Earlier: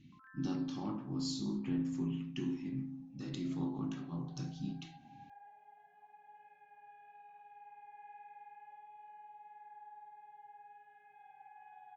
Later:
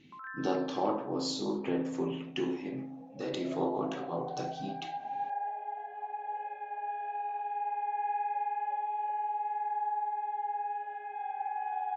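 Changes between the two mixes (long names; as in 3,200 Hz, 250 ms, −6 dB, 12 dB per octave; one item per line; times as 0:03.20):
speech −5.5 dB
master: remove drawn EQ curve 120 Hz 0 dB, 280 Hz −7 dB, 480 Hz −29 dB, 1,100 Hz −17 dB, 2,300 Hz −15 dB, 3,500 Hz −14 dB, 5,000 Hz −10 dB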